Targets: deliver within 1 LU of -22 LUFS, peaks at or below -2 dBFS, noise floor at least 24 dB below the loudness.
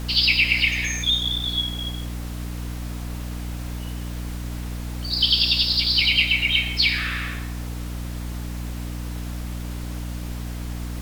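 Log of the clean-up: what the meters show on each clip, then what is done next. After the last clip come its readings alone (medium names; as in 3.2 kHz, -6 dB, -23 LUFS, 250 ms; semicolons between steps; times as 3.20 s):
hum 60 Hz; highest harmonic 300 Hz; hum level -28 dBFS; noise floor -31 dBFS; noise floor target -47 dBFS; loudness -23.0 LUFS; peak level -6.5 dBFS; loudness target -22.0 LUFS
-> hum notches 60/120/180/240/300 Hz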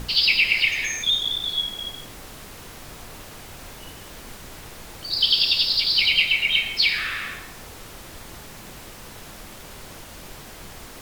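hum not found; noise floor -42 dBFS; noise floor target -44 dBFS
-> noise print and reduce 6 dB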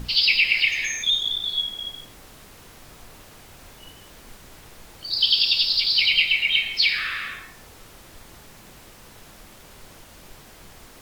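noise floor -48 dBFS; loudness -19.0 LUFS; peak level -6.5 dBFS; loudness target -22.0 LUFS
-> trim -3 dB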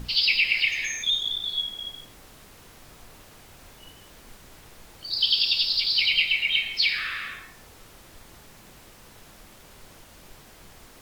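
loudness -22.0 LUFS; peak level -9.5 dBFS; noise floor -51 dBFS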